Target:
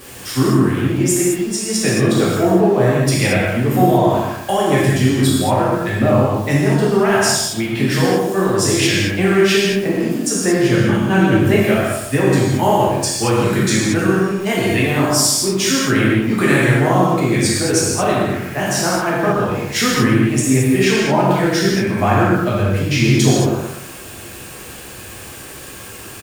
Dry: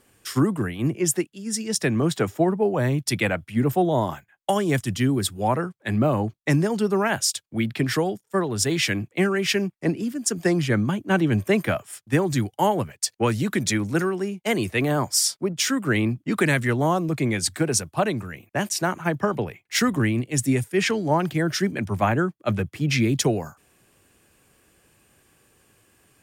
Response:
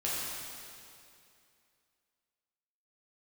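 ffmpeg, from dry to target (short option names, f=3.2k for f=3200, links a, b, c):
-filter_complex "[0:a]aeval=exprs='val(0)+0.5*0.0168*sgn(val(0))':c=same,asplit=2[a][b];[b]adelay=122,lowpass=f=1.7k:p=1,volume=-7.5dB,asplit=2[c][d];[d]adelay=122,lowpass=f=1.7k:p=1,volume=0.38,asplit=2[e][f];[f]adelay=122,lowpass=f=1.7k:p=1,volume=0.38,asplit=2[g][h];[h]adelay=122,lowpass=f=1.7k:p=1,volume=0.38[i];[a][c][e][g][i]amix=inputs=5:normalize=0[j];[1:a]atrim=start_sample=2205,afade=t=out:st=0.29:d=0.01,atrim=end_sample=13230[k];[j][k]afir=irnorm=-1:irlink=0,volume=1dB"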